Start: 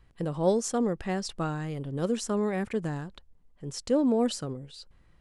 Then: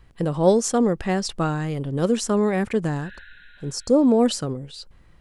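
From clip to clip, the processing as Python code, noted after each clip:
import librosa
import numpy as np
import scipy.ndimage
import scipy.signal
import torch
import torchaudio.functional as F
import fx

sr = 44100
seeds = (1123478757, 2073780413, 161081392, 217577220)

y = fx.spec_repair(x, sr, seeds[0], start_s=3.05, length_s=0.98, low_hz=1400.0, high_hz=4200.0, source='both')
y = y * 10.0 ** (7.5 / 20.0)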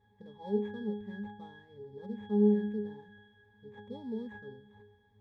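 y = fx.sample_hold(x, sr, seeds[1], rate_hz=4900.0, jitter_pct=20)
y = fx.dmg_noise_colour(y, sr, seeds[2], colour='pink', level_db=-46.0)
y = fx.octave_resonator(y, sr, note='G#', decay_s=0.55)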